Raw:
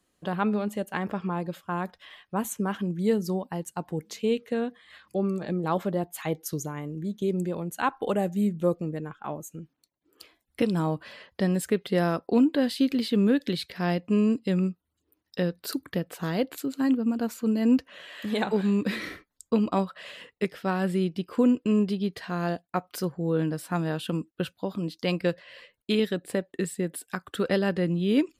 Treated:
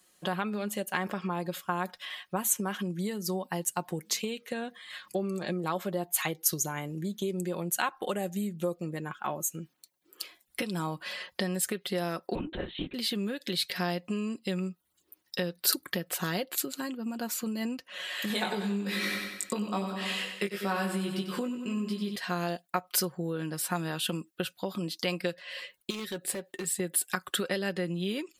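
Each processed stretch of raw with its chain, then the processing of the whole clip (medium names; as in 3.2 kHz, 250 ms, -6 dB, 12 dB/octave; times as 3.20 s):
12.35–12.94 s: de-esser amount 90% + LPC vocoder at 8 kHz whisper
18.28–22.16 s: doubling 20 ms -3 dB + feedback delay 94 ms, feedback 54%, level -8 dB
25.90–26.80 s: compression 2.5:1, threshold -38 dBFS + hard clipper -32.5 dBFS + doubling 13 ms -14 dB
whole clip: compression, threshold -31 dBFS; tilt EQ +2.5 dB/octave; comb 5.5 ms, depth 41%; trim +4 dB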